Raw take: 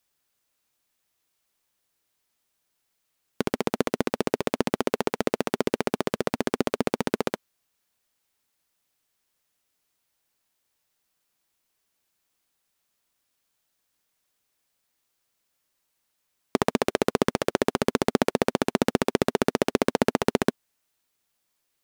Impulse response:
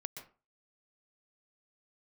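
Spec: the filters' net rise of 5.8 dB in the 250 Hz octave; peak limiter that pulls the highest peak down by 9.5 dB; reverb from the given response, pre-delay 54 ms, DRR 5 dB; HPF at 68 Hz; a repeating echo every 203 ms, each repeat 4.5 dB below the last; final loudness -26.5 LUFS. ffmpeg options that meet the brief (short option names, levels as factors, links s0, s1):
-filter_complex "[0:a]highpass=68,equalizer=f=250:t=o:g=7,alimiter=limit=0.251:level=0:latency=1,aecho=1:1:203|406|609|812|1015|1218|1421|1624|1827:0.596|0.357|0.214|0.129|0.0772|0.0463|0.0278|0.0167|0.01,asplit=2[s0][s1];[1:a]atrim=start_sample=2205,adelay=54[s2];[s1][s2]afir=irnorm=-1:irlink=0,volume=0.75[s3];[s0][s3]amix=inputs=2:normalize=0,volume=1.19"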